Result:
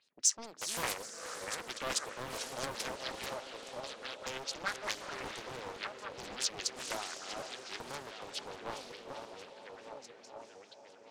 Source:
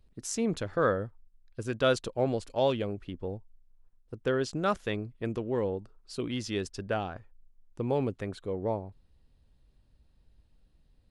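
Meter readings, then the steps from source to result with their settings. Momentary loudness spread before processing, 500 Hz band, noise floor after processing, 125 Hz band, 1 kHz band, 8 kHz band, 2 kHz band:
12 LU, -13.5 dB, -57 dBFS, -19.0 dB, -5.5 dB, +8.5 dB, -1.5 dB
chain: regenerating reverse delay 0.597 s, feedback 62%, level -8 dB; HPF 150 Hz 12 dB/oct; high shelf 9400 Hz -11 dB; in parallel at +3 dB: compressor, threshold -38 dBFS, peak gain reduction 16.5 dB; on the sum: LFO low-pass sine 4.7 Hz 600–7000 Hz; soft clip -14.5 dBFS, distortion -18 dB; differentiator; on a send: diffused feedback echo 0.457 s, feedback 41%, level -7.5 dB; on the sum: Doppler distortion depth 0.93 ms; gain +5.5 dB

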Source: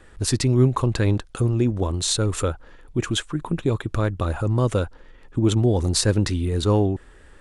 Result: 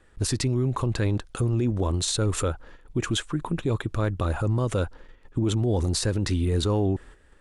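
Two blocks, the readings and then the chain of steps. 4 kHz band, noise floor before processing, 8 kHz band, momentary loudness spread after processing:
-3.5 dB, -49 dBFS, -4.0 dB, 6 LU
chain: gate -44 dBFS, range -9 dB; limiter -16.5 dBFS, peak gain reduction 10 dB

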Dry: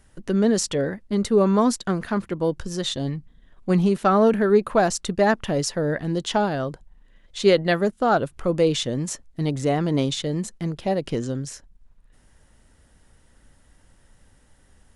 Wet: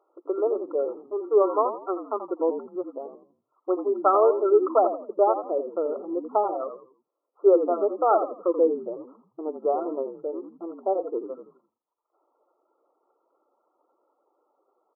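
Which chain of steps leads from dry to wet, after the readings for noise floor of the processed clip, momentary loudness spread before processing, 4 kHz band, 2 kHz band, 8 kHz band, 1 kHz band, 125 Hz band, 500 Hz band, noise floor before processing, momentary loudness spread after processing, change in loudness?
-82 dBFS, 10 LU, under -40 dB, under -25 dB, under -40 dB, 0.0 dB, under -35 dB, -0.5 dB, -58 dBFS, 16 LU, -2.5 dB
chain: reverb removal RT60 1.1 s; brick-wall FIR band-pass 310–1400 Hz; frequency-shifting echo 83 ms, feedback 34%, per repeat -45 Hz, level -9 dB

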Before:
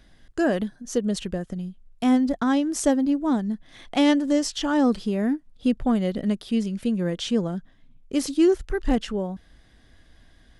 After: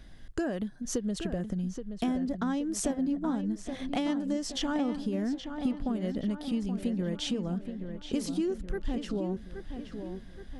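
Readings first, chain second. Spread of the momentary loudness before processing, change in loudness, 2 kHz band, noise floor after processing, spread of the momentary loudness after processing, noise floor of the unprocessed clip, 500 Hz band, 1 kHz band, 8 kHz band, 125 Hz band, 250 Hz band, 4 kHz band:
11 LU, -8.5 dB, -9.5 dB, -47 dBFS, 9 LU, -56 dBFS, -9.5 dB, -9.5 dB, -5.0 dB, -4.0 dB, -8.0 dB, -6.5 dB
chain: low shelf 230 Hz +5.5 dB; compressor 6:1, threshold -29 dBFS, peak gain reduction 15.5 dB; on a send: darkening echo 0.824 s, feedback 53%, low-pass 3300 Hz, level -8 dB

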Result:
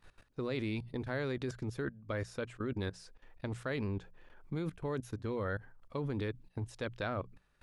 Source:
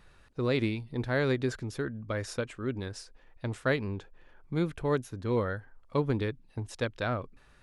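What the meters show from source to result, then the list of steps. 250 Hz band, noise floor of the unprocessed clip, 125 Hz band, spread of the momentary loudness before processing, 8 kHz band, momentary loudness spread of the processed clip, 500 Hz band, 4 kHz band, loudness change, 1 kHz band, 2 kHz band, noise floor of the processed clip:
-6.0 dB, -59 dBFS, -6.0 dB, 12 LU, -8.5 dB, 7 LU, -7.0 dB, -7.0 dB, -6.5 dB, -6.5 dB, -6.5 dB, -71 dBFS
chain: level quantiser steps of 19 dB; notches 60/120/180 Hz; gain +3 dB

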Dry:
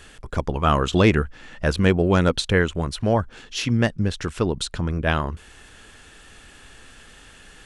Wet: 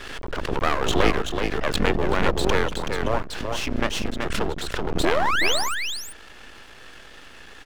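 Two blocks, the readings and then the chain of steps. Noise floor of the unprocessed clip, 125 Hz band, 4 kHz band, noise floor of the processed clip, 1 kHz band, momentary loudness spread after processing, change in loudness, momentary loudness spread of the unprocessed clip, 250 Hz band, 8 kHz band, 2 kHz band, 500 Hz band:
-48 dBFS, -9.0 dB, +2.5 dB, -45 dBFS, +1.5 dB, 11 LU, -2.5 dB, 11 LU, -5.5 dB, +3.0 dB, +1.5 dB, -1.5 dB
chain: octaver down 2 oct, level +3 dB; painted sound rise, 5.03–5.75, 300–9800 Hz -19 dBFS; low shelf 180 Hz +6 dB; in parallel at +1 dB: compressor, threshold -31 dBFS, peak gain reduction 24 dB; on the sum: three-band isolator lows -16 dB, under 280 Hz, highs -14 dB, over 4300 Hz; half-wave rectifier; on a send: echo 0.378 s -5.5 dB; on the sum: backwards sustainer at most 33 dB/s

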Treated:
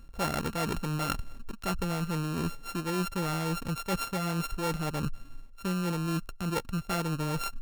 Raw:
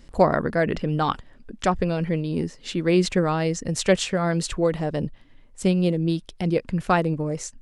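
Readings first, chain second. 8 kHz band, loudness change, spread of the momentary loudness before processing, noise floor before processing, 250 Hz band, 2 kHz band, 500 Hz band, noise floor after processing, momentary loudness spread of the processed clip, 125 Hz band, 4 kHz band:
-6.5 dB, -8.5 dB, 7 LU, -51 dBFS, -8.5 dB, -7.0 dB, -13.5 dB, -48 dBFS, 4 LU, -6.5 dB, -5.5 dB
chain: sample sorter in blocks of 32 samples; low shelf 120 Hz +8.5 dB; reverse; compressor 6:1, threshold -31 dBFS, peak gain reduction 18.5 dB; reverse; gain +2 dB

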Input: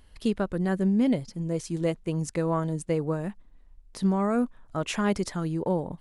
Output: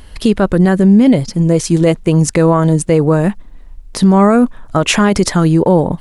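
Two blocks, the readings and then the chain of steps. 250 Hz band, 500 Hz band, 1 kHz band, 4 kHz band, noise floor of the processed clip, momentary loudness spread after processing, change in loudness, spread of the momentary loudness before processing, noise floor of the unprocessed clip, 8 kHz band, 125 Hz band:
+16.0 dB, +16.0 dB, +16.0 dB, +18.0 dB, -36 dBFS, 6 LU, +16.0 dB, 7 LU, -55 dBFS, +19.0 dB, +17.0 dB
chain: maximiser +20 dB; gain -1 dB

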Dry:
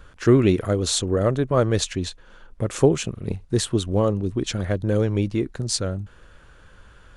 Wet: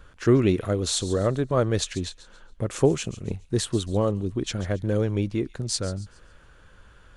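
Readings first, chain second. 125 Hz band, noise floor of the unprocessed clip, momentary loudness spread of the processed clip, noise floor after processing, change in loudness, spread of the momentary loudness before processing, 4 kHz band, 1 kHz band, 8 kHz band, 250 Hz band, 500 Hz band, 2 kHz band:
-3.0 dB, -50 dBFS, 11 LU, -53 dBFS, -3.0 dB, 11 LU, -3.0 dB, -3.0 dB, -3.0 dB, -3.0 dB, -3.0 dB, -3.0 dB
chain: thin delay 0.139 s, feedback 35%, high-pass 3100 Hz, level -14 dB; gain -3 dB

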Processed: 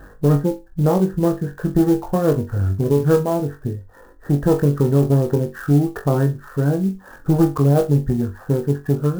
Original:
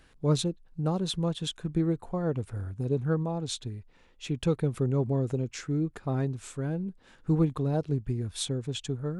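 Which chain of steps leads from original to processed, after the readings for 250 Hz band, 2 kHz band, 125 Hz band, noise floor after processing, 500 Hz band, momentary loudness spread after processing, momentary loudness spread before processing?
+11.5 dB, +10.5 dB, +11.0 dB, -45 dBFS, +12.5 dB, 7 LU, 8 LU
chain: one diode to ground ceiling -25 dBFS; reverb removal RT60 0.53 s; bell 470 Hz +3 dB; in parallel at +0.5 dB: compressor, threshold -42 dBFS, peak gain reduction 20 dB; on the sum: brick-wall FIR low-pass 1900 Hz; on a send: flutter echo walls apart 3.6 m, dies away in 0.25 s; on the sum: maximiser +15.5 dB; clock jitter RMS 0.025 ms; gain -5 dB

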